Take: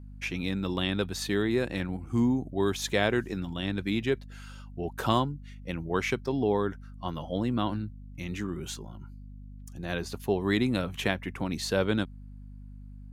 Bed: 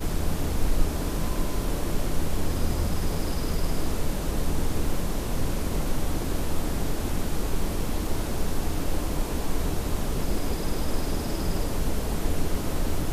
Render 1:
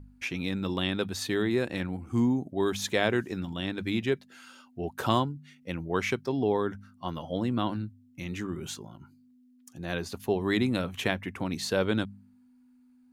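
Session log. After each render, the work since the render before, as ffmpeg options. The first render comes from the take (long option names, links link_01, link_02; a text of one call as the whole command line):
ffmpeg -i in.wav -af "bandreject=frequency=50:width_type=h:width=4,bandreject=frequency=100:width_type=h:width=4,bandreject=frequency=150:width_type=h:width=4,bandreject=frequency=200:width_type=h:width=4" out.wav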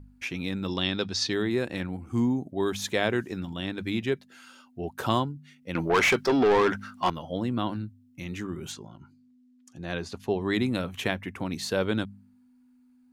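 ffmpeg -i in.wav -filter_complex "[0:a]asettb=1/sr,asplit=3[link_01][link_02][link_03];[link_01]atrim=end=0.684[link_04];[link_02]atrim=start=0.68:end=1.33,asetpts=PTS-STARTPTS,afade=type=in:duration=0.004:curve=qsin,afade=type=out:start_time=0.646:duration=0.004:curve=qsin,lowpass=frequency=5300:width_type=q:width=3.8[link_05];[link_03]atrim=start=1.326[link_06];[link_04][link_05]acrossfade=duration=0.004:curve1=hsin:curve2=qsin[link_07];[link_07][link_06]acrossfade=duration=0.004:curve1=qsin:curve2=hsin,asettb=1/sr,asplit=3[link_08][link_09][link_10];[link_08]atrim=end=5.754[link_11];[link_09]atrim=start=5.75:end=7.1,asetpts=PTS-STARTPTS,afade=type=in:duration=0.004:curve=qsin,afade=type=out:start_time=1.346:duration=0.004:curve=qsin,asplit=2[link_12][link_13];[link_13]highpass=frequency=720:poles=1,volume=25dB,asoftclip=type=tanh:threshold=-13dB[link_14];[link_12][link_14]amix=inputs=2:normalize=0,lowpass=frequency=4300:poles=1,volume=-6dB[link_15];[link_10]atrim=start=7.096[link_16];[link_11][link_15]acrossfade=duration=0.004:curve1=hsin:curve2=qsin[link_17];[link_17][link_16]acrossfade=duration=0.004:curve1=qsin:curve2=hsin,asettb=1/sr,asplit=3[link_18][link_19][link_20];[link_18]atrim=end=8.724[link_21];[link_19]atrim=start=8.72:end=10.54,asetpts=PTS-STARTPTS,afade=type=in:duration=0.004:curve=qsin,afade=type=out:start_time=1.816:duration=0.004:curve=qsin,lowpass=7500[link_22];[link_20]atrim=start=10.536[link_23];[link_21][link_22]acrossfade=duration=0.004:curve1=hsin:curve2=qsin[link_24];[link_24][link_23]acrossfade=duration=0.004:curve1=qsin:curve2=hsin" out.wav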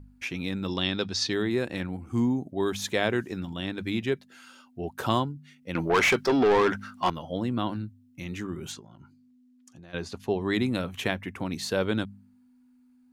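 ffmpeg -i in.wav -filter_complex "[0:a]asplit=3[link_01][link_02][link_03];[link_01]afade=type=out:start_time=8.79:duration=0.02[link_04];[link_02]acompressor=threshold=-45dB:ratio=6:attack=3.2:release=140:knee=1:detection=peak,afade=type=in:start_time=8.79:duration=0.02,afade=type=out:start_time=9.93:duration=0.02[link_05];[link_03]afade=type=in:start_time=9.93:duration=0.02[link_06];[link_04][link_05][link_06]amix=inputs=3:normalize=0" out.wav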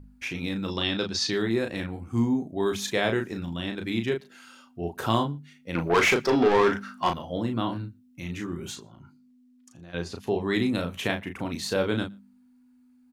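ffmpeg -i in.wav -filter_complex "[0:a]asplit=2[link_01][link_02];[link_02]adelay=35,volume=-5.5dB[link_03];[link_01][link_03]amix=inputs=2:normalize=0,asplit=2[link_04][link_05];[link_05]adelay=116.6,volume=-29dB,highshelf=frequency=4000:gain=-2.62[link_06];[link_04][link_06]amix=inputs=2:normalize=0" out.wav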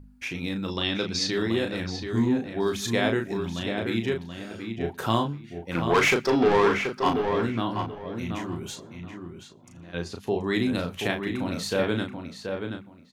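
ffmpeg -i in.wav -filter_complex "[0:a]asplit=2[link_01][link_02];[link_02]adelay=730,lowpass=frequency=3300:poles=1,volume=-6dB,asplit=2[link_03][link_04];[link_04]adelay=730,lowpass=frequency=3300:poles=1,volume=0.21,asplit=2[link_05][link_06];[link_06]adelay=730,lowpass=frequency=3300:poles=1,volume=0.21[link_07];[link_01][link_03][link_05][link_07]amix=inputs=4:normalize=0" out.wav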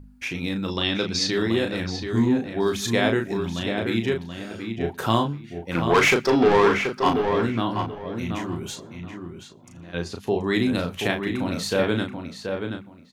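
ffmpeg -i in.wav -af "volume=3dB" out.wav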